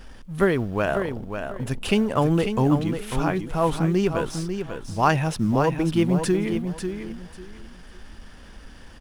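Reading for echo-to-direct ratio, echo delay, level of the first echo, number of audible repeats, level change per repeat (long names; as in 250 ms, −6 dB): −7.5 dB, 545 ms, −7.5 dB, 3, −13.0 dB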